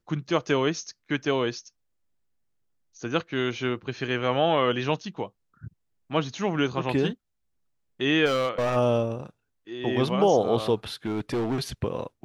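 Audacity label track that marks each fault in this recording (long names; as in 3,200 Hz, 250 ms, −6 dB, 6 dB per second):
8.250000	8.770000	clipping −21 dBFS
11.050000	11.680000	clipping −23.5 dBFS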